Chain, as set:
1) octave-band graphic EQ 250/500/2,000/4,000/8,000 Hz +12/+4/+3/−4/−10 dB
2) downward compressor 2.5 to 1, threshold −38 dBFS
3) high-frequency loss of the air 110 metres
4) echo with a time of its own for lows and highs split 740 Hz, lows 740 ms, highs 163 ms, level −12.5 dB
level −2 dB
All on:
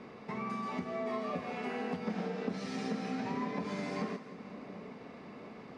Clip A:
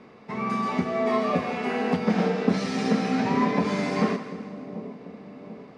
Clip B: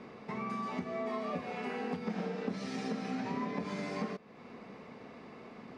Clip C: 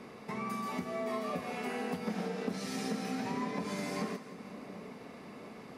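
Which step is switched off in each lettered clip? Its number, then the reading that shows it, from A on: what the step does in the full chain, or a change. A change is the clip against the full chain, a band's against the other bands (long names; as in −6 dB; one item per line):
2, average gain reduction 8.5 dB
4, echo-to-direct ratio −11.0 dB to none audible
3, 8 kHz band +8.5 dB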